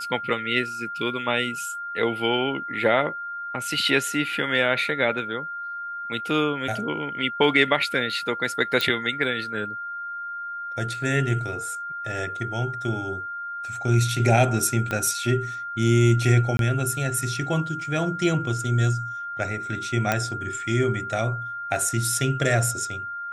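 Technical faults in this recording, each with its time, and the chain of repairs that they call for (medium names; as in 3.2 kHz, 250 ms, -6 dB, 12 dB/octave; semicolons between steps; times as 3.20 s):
whine 1.4 kHz -30 dBFS
8.81 s: pop -9 dBFS
14.91 s: pop -14 dBFS
16.57–16.59 s: dropout 22 ms
20.12 s: pop -7 dBFS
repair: de-click; band-stop 1.4 kHz, Q 30; interpolate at 16.57 s, 22 ms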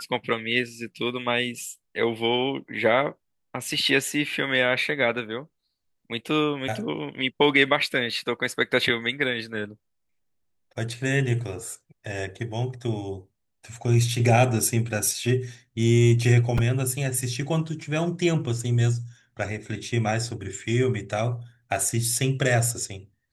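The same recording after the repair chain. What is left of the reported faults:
14.91 s: pop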